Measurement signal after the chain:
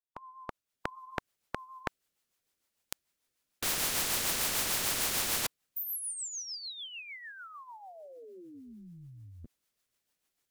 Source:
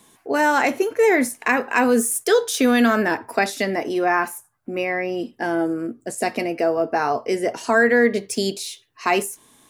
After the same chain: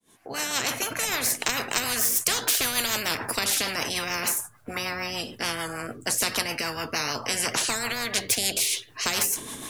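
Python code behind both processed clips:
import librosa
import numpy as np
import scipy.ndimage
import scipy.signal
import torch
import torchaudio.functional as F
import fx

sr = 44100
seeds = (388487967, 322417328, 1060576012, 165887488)

y = fx.fade_in_head(x, sr, length_s=1.35)
y = fx.rotary(y, sr, hz=6.7)
y = fx.spectral_comp(y, sr, ratio=10.0)
y = F.gain(torch.from_numpy(y), 1.5).numpy()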